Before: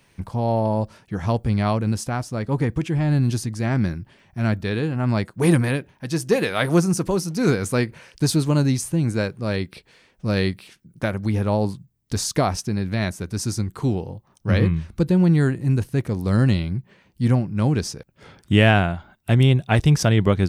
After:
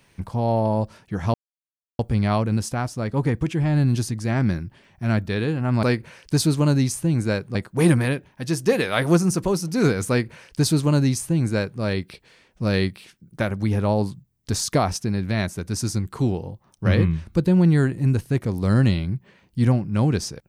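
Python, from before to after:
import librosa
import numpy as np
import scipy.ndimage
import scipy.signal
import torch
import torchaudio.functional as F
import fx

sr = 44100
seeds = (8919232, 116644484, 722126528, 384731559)

y = fx.edit(x, sr, fx.insert_silence(at_s=1.34, length_s=0.65),
    fx.duplicate(start_s=7.72, length_s=1.72, to_s=5.18), tone=tone)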